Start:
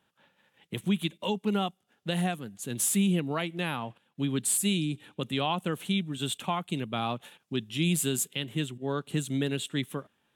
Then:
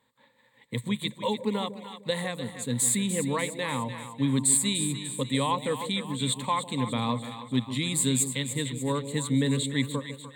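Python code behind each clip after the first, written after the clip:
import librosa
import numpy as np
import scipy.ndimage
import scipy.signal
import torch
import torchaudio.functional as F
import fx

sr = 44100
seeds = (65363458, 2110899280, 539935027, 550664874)

y = fx.ripple_eq(x, sr, per_octave=1.0, db=15)
y = fx.echo_split(y, sr, split_hz=660.0, low_ms=151, high_ms=296, feedback_pct=52, wet_db=-10)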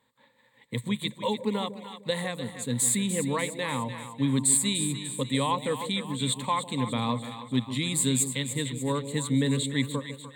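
y = x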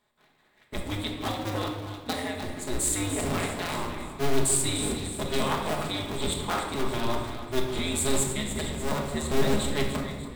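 y = fx.cycle_switch(x, sr, every=2, mode='inverted')
y = fx.room_shoebox(y, sr, seeds[0], volume_m3=760.0, walls='mixed', distance_m=1.4)
y = y * 10.0 ** (-4.0 / 20.0)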